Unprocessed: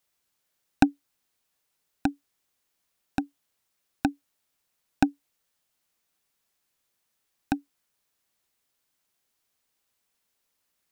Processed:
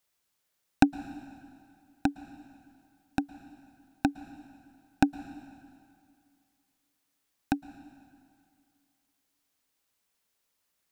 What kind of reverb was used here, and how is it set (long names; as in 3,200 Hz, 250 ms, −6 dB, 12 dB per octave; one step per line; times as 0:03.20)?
dense smooth reverb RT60 2.3 s, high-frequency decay 0.85×, pre-delay 100 ms, DRR 15.5 dB
level −1 dB